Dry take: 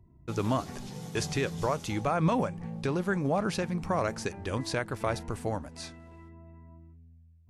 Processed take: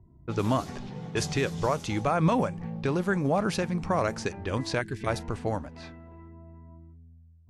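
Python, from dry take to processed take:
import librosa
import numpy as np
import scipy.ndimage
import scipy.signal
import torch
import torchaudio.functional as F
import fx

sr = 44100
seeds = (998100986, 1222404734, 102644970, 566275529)

y = fx.env_lowpass(x, sr, base_hz=1200.0, full_db=-26.0)
y = fx.spec_box(y, sr, start_s=4.81, length_s=0.26, low_hz=450.0, high_hz=1500.0, gain_db=-19)
y = y * 10.0 ** (2.5 / 20.0)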